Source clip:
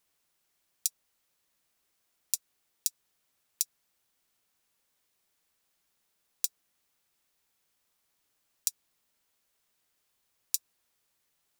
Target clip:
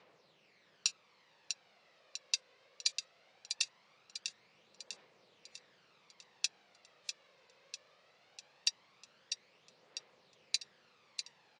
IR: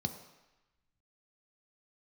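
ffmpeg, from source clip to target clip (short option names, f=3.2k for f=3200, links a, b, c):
-af "highpass=f=140:w=0.5412,highpass=f=140:w=1.3066,equalizer=f=270:t=q:w=4:g=-8,equalizer=f=510:t=q:w=4:g=8,equalizer=f=1.5k:t=q:w=4:g=-4,equalizer=f=3.3k:t=q:w=4:g=-5,lowpass=f=4k:w=0.5412,lowpass=f=4k:w=1.3066,aphaser=in_gain=1:out_gain=1:delay=2:decay=0.53:speed=0.2:type=triangular,aecho=1:1:648|1296|1944|2592|3240|3888:0.376|0.184|0.0902|0.0442|0.0217|0.0106,asoftclip=type=tanh:threshold=-31.5dB,volume=15dB" -ar 24000 -c:a aac -b:a 48k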